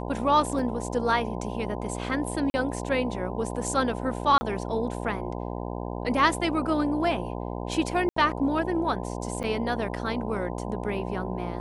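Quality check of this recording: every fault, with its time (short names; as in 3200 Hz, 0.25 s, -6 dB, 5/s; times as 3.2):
buzz 60 Hz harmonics 17 -33 dBFS
0.59 gap 2.3 ms
2.5–2.54 gap 40 ms
4.38–4.41 gap 30 ms
8.09–8.16 gap 74 ms
9.43–9.44 gap 7.9 ms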